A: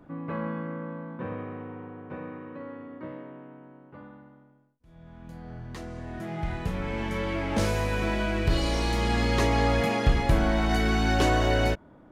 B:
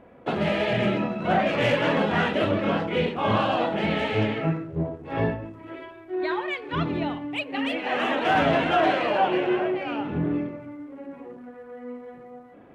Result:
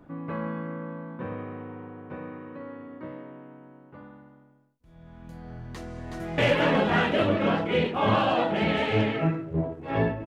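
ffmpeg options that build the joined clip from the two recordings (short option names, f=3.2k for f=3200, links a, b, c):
-filter_complex "[0:a]apad=whole_dur=10.26,atrim=end=10.26,atrim=end=6.382[a];[1:a]atrim=start=1.598:end=5.48[b];[a][b]acrossfade=d=0.004:c1=hsin:c2=hsin,asplit=2[c][d];[d]afade=t=in:st=5.74:d=0.01,afade=t=out:st=6.38:d=0.01,aecho=0:1:370|740|1110|1480|1850|2220|2590:0.707946|0.353973|0.176986|0.0884932|0.0442466|0.0221233|0.0110617[e];[c][e]amix=inputs=2:normalize=0"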